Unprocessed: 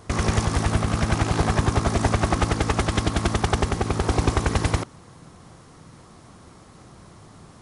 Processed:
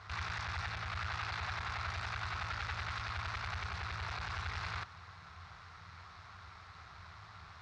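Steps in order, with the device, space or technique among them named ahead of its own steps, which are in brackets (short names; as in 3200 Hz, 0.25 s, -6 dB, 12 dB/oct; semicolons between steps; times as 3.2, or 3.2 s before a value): scooped metal amplifier (tube stage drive 36 dB, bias 0.5; speaker cabinet 79–3900 Hz, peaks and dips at 86 Hz +8 dB, 130 Hz -9 dB, 210 Hz -7 dB, 530 Hz -8 dB, 1400 Hz +5 dB, 3100 Hz -8 dB; passive tone stack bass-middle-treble 10-0-10); gain +8.5 dB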